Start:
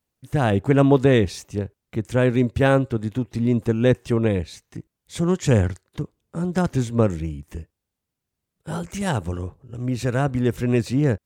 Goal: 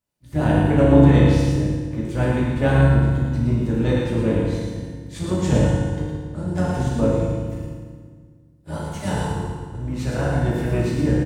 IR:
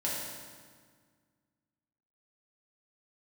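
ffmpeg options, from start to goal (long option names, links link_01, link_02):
-filter_complex "[0:a]aecho=1:1:111:0.562[link_01];[1:a]atrim=start_sample=2205[link_02];[link_01][link_02]afir=irnorm=-1:irlink=0,asplit=3[link_03][link_04][link_05];[link_04]asetrate=22050,aresample=44100,atempo=2,volume=-5dB[link_06];[link_05]asetrate=52444,aresample=44100,atempo=0.840896,volume=-15dB[link_07];[link_03][link_06][link_07]amix=inputs=3:normalize=0,volume=-7.5dB"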